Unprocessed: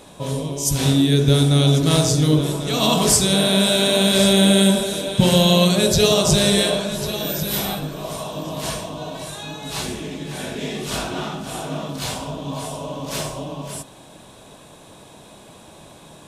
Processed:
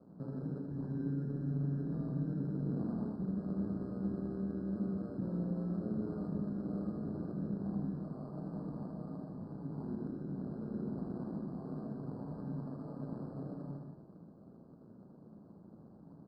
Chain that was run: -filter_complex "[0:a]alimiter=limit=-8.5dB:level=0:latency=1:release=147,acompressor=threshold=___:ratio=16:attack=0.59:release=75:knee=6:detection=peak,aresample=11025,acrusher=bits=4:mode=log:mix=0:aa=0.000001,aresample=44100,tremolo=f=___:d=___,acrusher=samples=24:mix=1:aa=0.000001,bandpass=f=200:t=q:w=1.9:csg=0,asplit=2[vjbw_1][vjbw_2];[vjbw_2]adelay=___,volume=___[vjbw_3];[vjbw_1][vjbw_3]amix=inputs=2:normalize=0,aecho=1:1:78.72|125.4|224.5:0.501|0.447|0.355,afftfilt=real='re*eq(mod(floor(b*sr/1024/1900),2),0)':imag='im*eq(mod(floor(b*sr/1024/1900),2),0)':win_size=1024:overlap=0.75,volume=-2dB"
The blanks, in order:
-22dB, 120, 0.919, 36, -13dB